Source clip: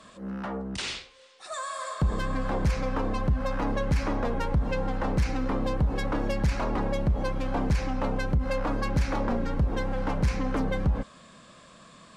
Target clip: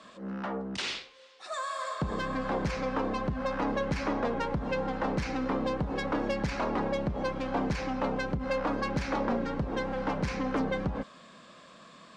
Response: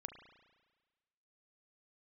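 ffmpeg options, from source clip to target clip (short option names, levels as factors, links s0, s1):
-filter_complex "[0:a]acrossover=split=160 6900:gain=0.224 1 0.178[s0][s1][s2];[s0][s1][s2]amix=inputs=3:normalize=0"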